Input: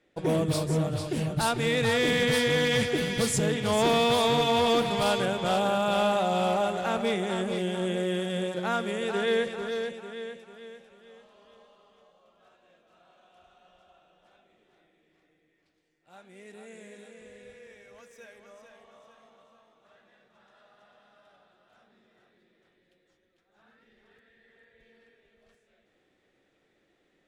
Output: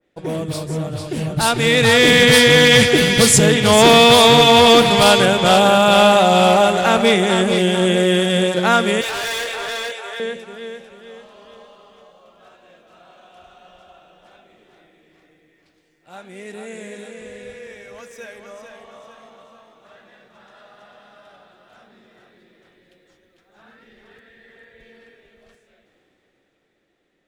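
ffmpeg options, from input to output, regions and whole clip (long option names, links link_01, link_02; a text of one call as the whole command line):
ffmpeg -i in.wav -filter_complex "[0:a]asettb=1/sr,asplit=3[link_01][link_02][link_03];[link_01]atrim=end=9.014[link_04];[link_02]atrim=start=9.01:end=10.2,asetpts=PTS-STARTPTS,afade=type=in:duration=0.004:curve=qsin,afade=type=out:start_time=1.186:duration=0.004:curve=qsin,highpass=frequency=550:width=0.5412,highpass=frequency=550:width=1.3066,asplit=2[link_05][link_06];[link_06]adelay=23,volume=-3dB[link_07];[link_05][link_07]amix=inputs=2:normalize=0,atrim=end_sample=52479,asoftclip=type=hard:threshold=-37dB[link_08];[link_03]atrim=start=10.196[link_09];[link_04][link_08]acrossfade=duration=0.004:curve1=hsin:curve2=qsin[link_10];[link_10][link_09]acrossfade=duration=0.004:curve1=qsin:curve2=hsin,dynaudnorm=framelen=100:gausssize=31:maxgain=12dB,adynamicequalizer=threshold=0.0316:dfrequency=1600:dqfactor=0.7:tfrequency=1600:tqfactor=0.7:attack=5:release=100:ratio=0.375:range=2:mode=boostabove:tftype=highshelf,volume=1dB" out.wav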